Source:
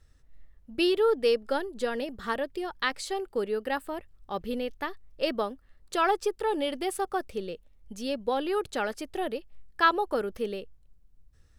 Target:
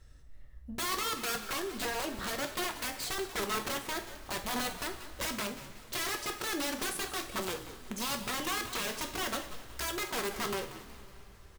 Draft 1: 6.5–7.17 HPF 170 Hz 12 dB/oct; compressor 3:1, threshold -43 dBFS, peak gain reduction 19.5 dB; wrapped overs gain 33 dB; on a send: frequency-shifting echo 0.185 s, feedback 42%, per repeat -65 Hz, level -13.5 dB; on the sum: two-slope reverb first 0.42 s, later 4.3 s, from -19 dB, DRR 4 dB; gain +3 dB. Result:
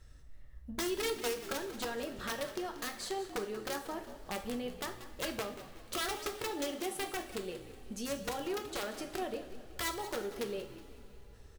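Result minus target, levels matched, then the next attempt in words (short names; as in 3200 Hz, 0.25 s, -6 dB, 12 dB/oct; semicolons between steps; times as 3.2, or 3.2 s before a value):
compressor: peak gain reduction +5 dB
6.5–7.17 HPF 170 Hz 12 dB/oct; compressor 3:1, threshold -35.5 dBFS, peak gain reduction 14.5 dB; wrapped overs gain 33 dB; on a send: frequency-shifting echo 0.185 s, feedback 42%, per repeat -65 Hz, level -13.5 dB; on the sum: two-slope reverb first 0.42 s, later 4.3 s, from -19 dB, DRR 4 dB; gain +3 dB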